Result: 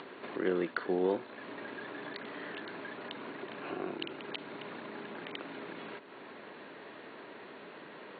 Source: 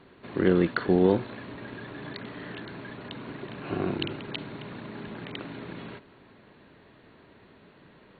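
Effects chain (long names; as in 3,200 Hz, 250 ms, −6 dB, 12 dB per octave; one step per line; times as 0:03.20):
upward compression, threshold −26 dBFS
band-pass filter 330–3,900 Hz
level −6 dB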